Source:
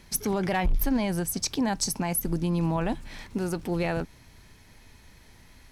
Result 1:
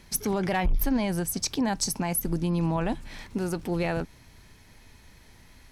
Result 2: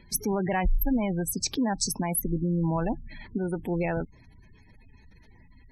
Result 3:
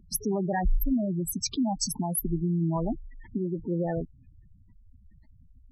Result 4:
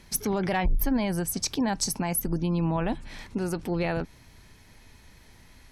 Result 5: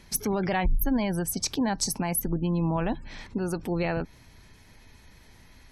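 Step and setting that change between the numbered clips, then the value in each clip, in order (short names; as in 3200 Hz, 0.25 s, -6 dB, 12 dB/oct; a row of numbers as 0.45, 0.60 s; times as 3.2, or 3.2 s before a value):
spectral gate, under each frame's peak: -60, -20, -10, -45, -35 dB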